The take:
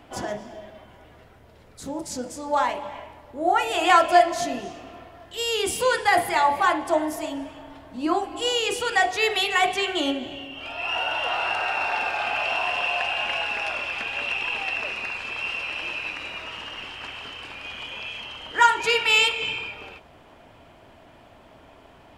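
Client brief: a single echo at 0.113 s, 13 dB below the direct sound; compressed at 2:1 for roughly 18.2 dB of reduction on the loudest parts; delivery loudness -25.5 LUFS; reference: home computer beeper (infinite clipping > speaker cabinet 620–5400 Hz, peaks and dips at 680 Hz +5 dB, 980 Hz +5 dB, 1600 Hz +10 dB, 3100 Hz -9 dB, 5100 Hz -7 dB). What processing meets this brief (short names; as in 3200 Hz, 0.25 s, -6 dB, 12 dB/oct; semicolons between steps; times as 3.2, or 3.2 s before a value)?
compressor 2:1, threshold -46 dBFS; echo 0.113 s -13 dB; infinite clipping; speaker cabinet 620–5400 Hz, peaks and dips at 680 Hz +5 dB, 980 Hz +5 dB, 1600 Hz +10 dB, 3100 Hz -9 dB, 5100 Hz -7 dB; gain +13 dB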